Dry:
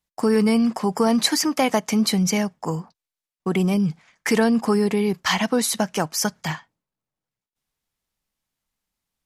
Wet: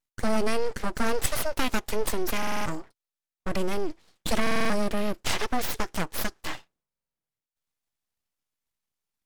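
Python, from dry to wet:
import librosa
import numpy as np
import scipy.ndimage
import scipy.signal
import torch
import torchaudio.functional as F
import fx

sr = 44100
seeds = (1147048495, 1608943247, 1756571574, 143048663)

y = np.abs(x)
y = fx.vibrato(y, sr, rate_hz=2.0, depth_cents=13.0)
y = fx.buffer_glitch(y, sr, at_s=(2.38, 4.42, 6.88), block=2048, repeats=5)
y = F.gain(torch.from_numpy(y), -3.5).numpy()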